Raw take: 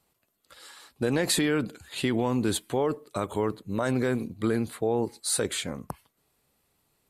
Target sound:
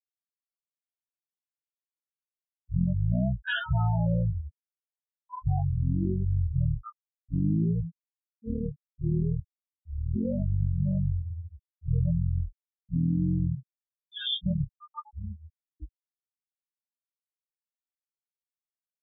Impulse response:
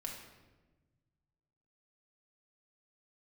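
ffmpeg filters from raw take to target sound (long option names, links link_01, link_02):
-af "adynamicequalizer=threshold=0.00224:dfrequency=2500:dqfactor=5.2:tfrequency=2500:tqfactor=5.2:attack=5:release=100:ratio=0.375:range=2:mode=boostabove:tftype=bell,afftfilt=real='re*gte(hypot(re,im),0.126)':imag='im*gte(hypot(re,im),0.126)':win_size=1024:overlap=0.75,asetrate=16449,aresample=44100"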